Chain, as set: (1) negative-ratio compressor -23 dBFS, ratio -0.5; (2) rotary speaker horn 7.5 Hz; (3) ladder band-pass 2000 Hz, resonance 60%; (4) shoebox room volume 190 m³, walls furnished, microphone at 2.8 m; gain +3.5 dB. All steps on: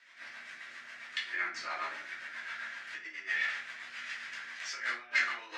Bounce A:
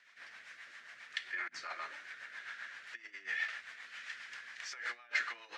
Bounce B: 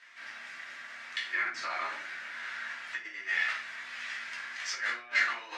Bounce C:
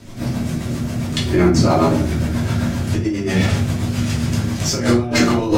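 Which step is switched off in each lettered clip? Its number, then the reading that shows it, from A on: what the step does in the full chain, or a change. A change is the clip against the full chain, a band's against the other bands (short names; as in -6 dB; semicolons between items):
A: 4, echo-to-direct 4.5 dB to none; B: 2, loudness change +2.5 LU; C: 3, 250 Hz band +27.5 dB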